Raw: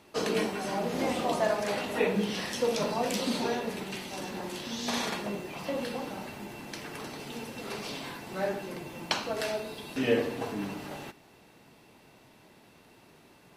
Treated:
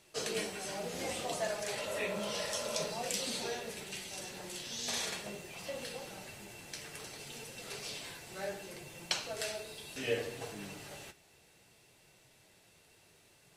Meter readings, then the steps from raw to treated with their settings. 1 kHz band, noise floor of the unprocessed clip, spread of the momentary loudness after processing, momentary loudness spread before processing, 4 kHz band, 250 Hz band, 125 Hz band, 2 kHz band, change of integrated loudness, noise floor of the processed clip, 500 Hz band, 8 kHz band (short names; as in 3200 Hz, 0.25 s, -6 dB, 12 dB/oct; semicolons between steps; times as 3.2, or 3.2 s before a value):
-9.5 dB, -58 dBFS, 11 LU, 12 LU, -2.5 dB, -13.5 dB, -9.0 dB, -5.5 dB, -6.5 dB, -65 dBFS, -8.5 dB, +2.0 dB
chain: spectral repair 1.79–2.79, 450–1600 Hz after; ten-band EQ 250 Hz -12 dB, 1000 Hz -8 dB, 8000 Hz +8 dB; flange 0.66 Hz, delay 5.1 ms, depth 8.6 ms, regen -47%